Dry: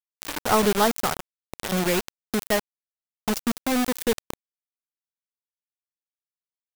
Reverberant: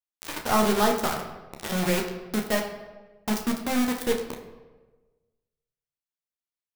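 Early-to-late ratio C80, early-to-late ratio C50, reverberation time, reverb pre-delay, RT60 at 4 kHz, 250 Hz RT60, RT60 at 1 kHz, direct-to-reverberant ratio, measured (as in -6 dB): 9.5 dB, 7.0 dB, 1.2 s, 13 ms, 0.80 s, 1.3 s, 1.1 s, 1.0 dB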